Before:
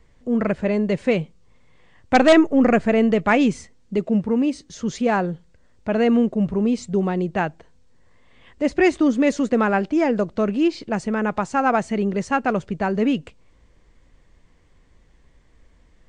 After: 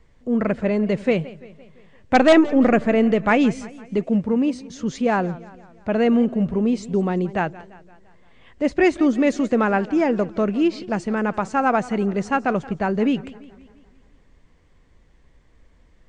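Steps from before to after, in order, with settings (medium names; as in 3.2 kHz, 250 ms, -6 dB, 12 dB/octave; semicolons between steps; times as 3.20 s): treble shelf 5.4 kHz -4.5 dB; modulated delay 171 ms, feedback 54%, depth 154 cents, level -19 dB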